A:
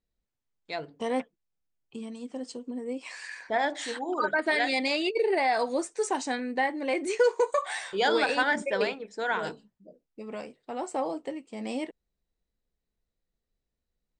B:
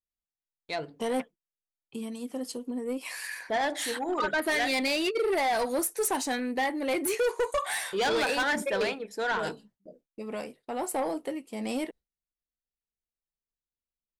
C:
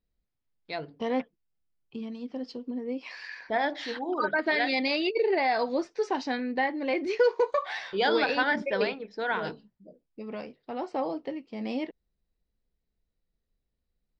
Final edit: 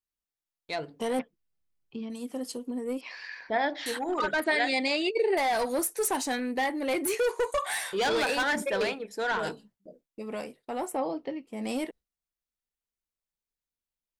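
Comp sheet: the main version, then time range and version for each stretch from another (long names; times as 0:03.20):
B
0:01.19–0:02.10: punch in from C
0:03.01–0:03.86: punch in from C
0:04.44–0:05.37: punch in from A
0:10.90–0:11.56: punch in from C, crossfade 0.24 s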